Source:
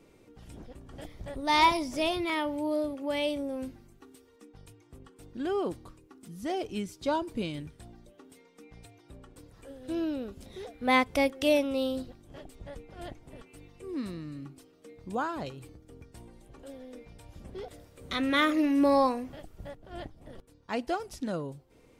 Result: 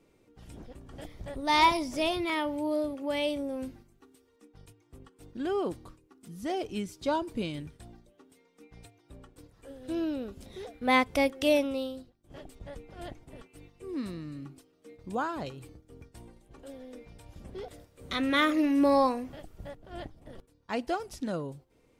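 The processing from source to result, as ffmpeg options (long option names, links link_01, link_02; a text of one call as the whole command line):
ffmpeg -i in.wav -filter_complex "[0:a]asplit=2[link_01][link_02];[link_01]atrim=end=12.24,asetpts=PTS-STARTPTS,afade=type=out:start_time=11.66:duration=0.58:curve=qua:silence=0.188365[link_03];[link_02]atrim=start=12.24,asetpts=PTS-STARTPTS,afade=type=in:duration=0.004:curve=hsin:silence=0.188365[link_04];[link_03][link_04]concat=n=2:v=0:a=1,agate=range=-6dB:threshold=-51dB:ratio=16:detection=peak" out.wav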